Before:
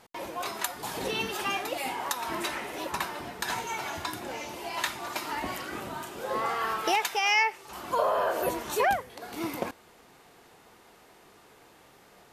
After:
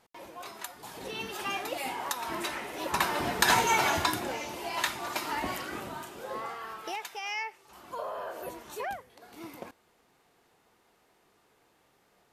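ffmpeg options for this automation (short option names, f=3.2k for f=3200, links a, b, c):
-af "volume=9dB,afade=t=in:st=1:d=0.67:silence=0.446684,afade=t=in:st=2.78:d=0.54:silence=0.281838,afade=t=out:st=3.85:d=0.54:silence=0.375837,afade=t=out:st=5.49:d=1.13:silence=0.266073"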